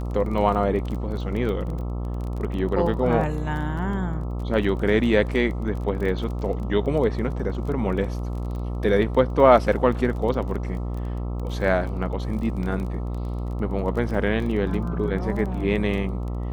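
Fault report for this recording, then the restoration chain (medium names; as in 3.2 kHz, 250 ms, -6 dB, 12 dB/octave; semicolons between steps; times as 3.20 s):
buzz 60 Hz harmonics 22 -28 dBFS
crackle 21 per s -31 dBFS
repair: de-click; de-hum 60 Hz, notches 22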